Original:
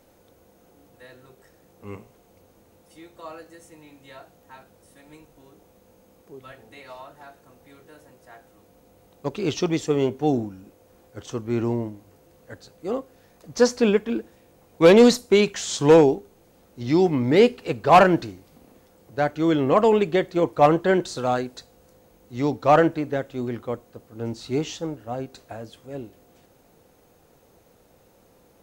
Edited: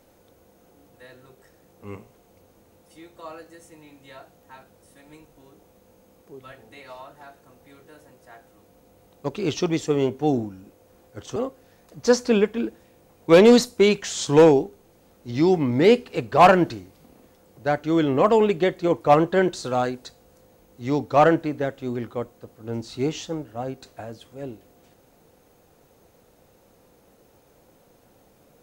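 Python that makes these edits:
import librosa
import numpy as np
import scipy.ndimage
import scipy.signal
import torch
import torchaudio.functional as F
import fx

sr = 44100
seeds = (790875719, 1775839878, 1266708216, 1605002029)

y = fx.edit(x, sr, fx.cut(start_s=11.36, length_s=1.52), tone=tone)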